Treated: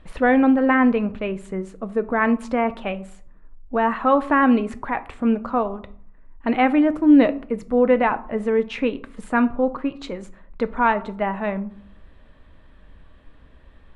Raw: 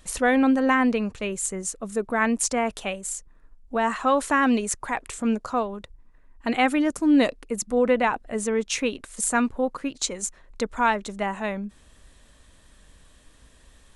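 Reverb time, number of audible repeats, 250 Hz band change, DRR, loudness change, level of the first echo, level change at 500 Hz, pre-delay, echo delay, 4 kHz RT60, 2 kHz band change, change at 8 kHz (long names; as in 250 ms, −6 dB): 0.60 s, no echo audible, +5.0 dB, 11.0 dB, +4.0 dB, no echo audible, +4.0 dB, 3 ms, no echo audible, 0.30 s, +1.5 dB, below −20 dB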